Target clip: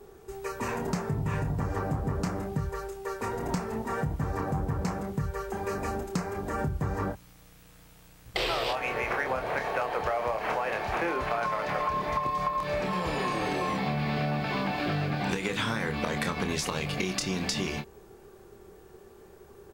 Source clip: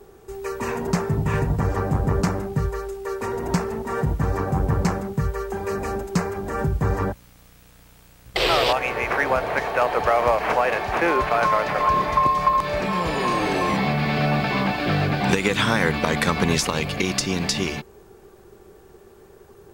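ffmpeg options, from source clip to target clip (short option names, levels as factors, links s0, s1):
-filter_complex "[0:a]asplit=2[s0][s1];[s1]adelay=27,volume=0.447[s2];[s0][s2]amix=inputs=2:normalize=0,acompressor=threshold=0.0794:ratio=6,volume=0.631"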